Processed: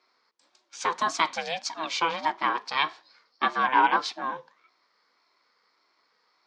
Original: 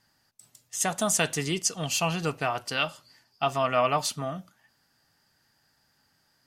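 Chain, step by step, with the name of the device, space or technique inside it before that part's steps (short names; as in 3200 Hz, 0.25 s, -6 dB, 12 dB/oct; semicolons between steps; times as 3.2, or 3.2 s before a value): voice changer toy (ring modulator with a swept carrier 410 Hz, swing 20%, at 1.7 Hz; speaker cabinet 450–4700 Hz, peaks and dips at 600 Hz -7 dB, 980 Hz +6 dB, 2900 Hz -5 dB); gain +5 dB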